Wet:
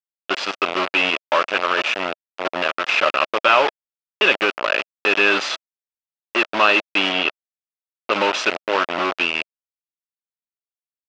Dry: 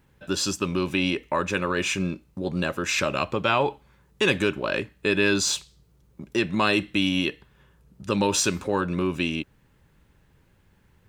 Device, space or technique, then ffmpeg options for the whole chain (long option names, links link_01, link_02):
hand-held game console: -filter_complex "[0:a]acrusher=bits=3:mix=0:aa=0.000001,highpass=440,equalizer=frequency=630:width_type=q:width=4:gain=5,equalizer=frequency=1300:width_type=q:width=4:gain=6,equalizer=frequency=2700:width_type=q:width=4:gain=5,equalizer=frequency=4000:width_type=q:width=4:gain=-4,lowpass=frequency=4300:width=0.5412,lowpass=frequency=4300:width=1.3066,asettb=1/sr,asplit=3[link_01][link_02][link_03];[link_01]atrim=end=7.124[link_04];[link_02]atrim=start=7.12:end=8.12,asetpts=PTS-STARTPTS,afade=type=in:duration=0.004:curve=qsin,afade=type=out:start_time=0.996:duration=0.004:curve=qsin,lowpass=5400[link_05];[link_03]atrim=start=8.116[link_06];[link_04][link_05]acrossfade=duration=0.004:curve1=hsin:curve2=qsin[link_07];[link_07][link_06]acrossfade=duration=0.004:curve1=qsin:curve2=hsin,volume=4.5dB"